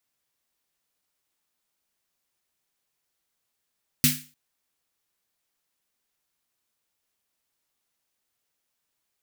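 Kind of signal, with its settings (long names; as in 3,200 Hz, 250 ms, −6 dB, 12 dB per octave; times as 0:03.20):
synth snare length 0.30 s, tones 150 Hz, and 250 Hz, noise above 1,800 Hz, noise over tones 3.5 dB, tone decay 0.32 s, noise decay 0.35 s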